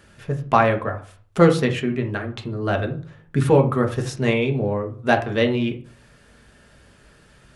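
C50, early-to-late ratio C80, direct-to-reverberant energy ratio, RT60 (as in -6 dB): 12.0 dB, 16.5 dB, 2.5 dB, 0.45 s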